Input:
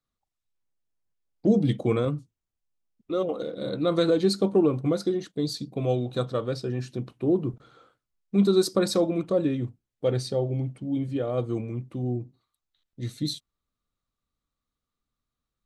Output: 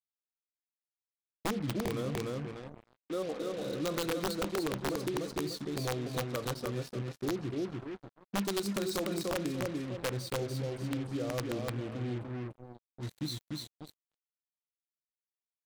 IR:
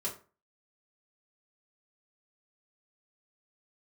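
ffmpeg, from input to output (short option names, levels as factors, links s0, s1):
-af "aecho=1:1:295|590|885|1180:0.631|0.215|0.0729|0.0248,acompressor=threshold=0.0708:ratio=6,aeval=exprs='(mod(8.41*val(0)+1,2)-1)/8.41':c=same,acrusher=bits=5:mix=0:aa=0.5,volume=0.447"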